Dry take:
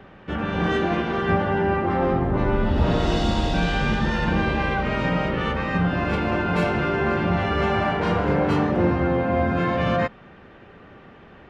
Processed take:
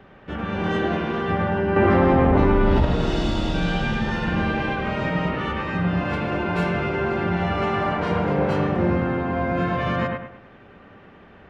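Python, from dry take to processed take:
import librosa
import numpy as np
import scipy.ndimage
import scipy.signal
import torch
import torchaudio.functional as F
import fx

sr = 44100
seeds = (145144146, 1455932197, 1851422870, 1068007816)

y = fx.echo_bbd(x, sr, ms=102, stages=2048, feedback_pct=36, wet_db=-3)
y = fx.env_flatten(y, sr, amount_pct=100, at=(1.76, 2.85))
y = F.gain(torch.from_numpy(y), -3.0).numpy()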